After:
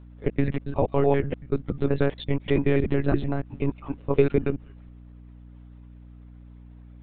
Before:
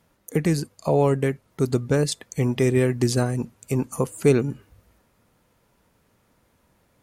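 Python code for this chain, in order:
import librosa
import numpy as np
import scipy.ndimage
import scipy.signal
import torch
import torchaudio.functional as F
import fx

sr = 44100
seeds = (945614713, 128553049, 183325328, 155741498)

y = fx.block_reorder(x, sr, ms=95.0, group=2)
y = fx.lpc_monotone(y, sr, seeds[0], pitch_hz=140.0, order=16)
y = fx.add_hum(y, sr, base_hz=60, snr_db=20)
y = y * librosa.db_to_amplitude(-1.0)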